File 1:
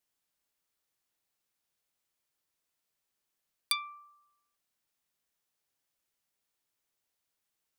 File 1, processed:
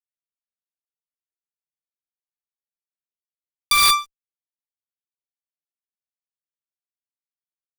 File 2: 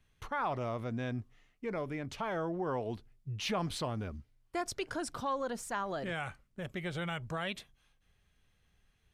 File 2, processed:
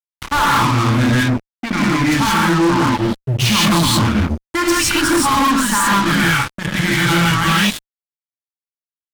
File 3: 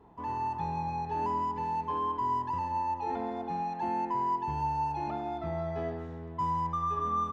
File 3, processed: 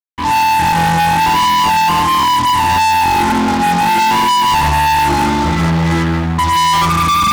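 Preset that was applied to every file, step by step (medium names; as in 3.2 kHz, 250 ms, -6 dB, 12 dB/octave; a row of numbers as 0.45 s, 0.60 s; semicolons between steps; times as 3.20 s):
gated-style reverb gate 200 ms rising, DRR -6 dB; FFT band-reject 350–820 Hz; fuzz box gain 36 dB, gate -42 dBFS; peak normalisation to -9 dBFS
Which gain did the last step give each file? +1.0 dB, +2.0 dB, +2.5 dB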